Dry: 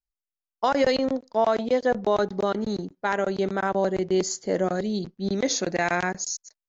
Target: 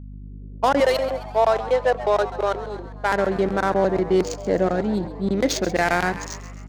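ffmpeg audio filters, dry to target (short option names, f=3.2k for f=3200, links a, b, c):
-filter_complex "[0:a]asettb=1/sr,asplit=3[a][b][c];[a]atrim=end=0.804[d];[b]atrim=start=0.8:end=3.12,asetpts=PTS-STARTPTS,afade=t=in:d=0.004:c=qsin,afade=t=out:st=2.316:d=0.004:c=qsin,highpass=f=430:w=0.5412,highpass=f=430:w=1.3066[e];[c]atrim=start=3.116[f];[d][e]acrossfade=d=0.004:c1=hsin:c2=qsin[g];[g][f]acrossfade=d=0.004:c1=qsin:c2=hsin,adynamicsmooth=sensitivity=4:basefreq=1k,aeval=exprs='val(0)+0.01*(sin(2*PI*50*n/s)+sin(2*PI*2*50*n/s)/2+sin(2*PI*3*50*n/s)/3+sin(2*PI*4*50*n/s)/4+sin(2*PI*5*50*n/s)/5)':c=same,asplit=6[h][i][j][k][l][m];[i]adelay=133,afreqshift=110,volume=-14.5dB[n];[j]adelay=266,afreqshift=220,volume=-19.9dB[o];[k]adelay=399,afreqshift=330,volume=-25.2dB[p];[l]adelay=532,afreqshift=440,volume=-30.6dB[q];[m]adelay=665,afreqshift=550,volume=-35.9dB[r];[h][n][o][p][q][r]amix=inputs=6:normalize=0,volume=4dB"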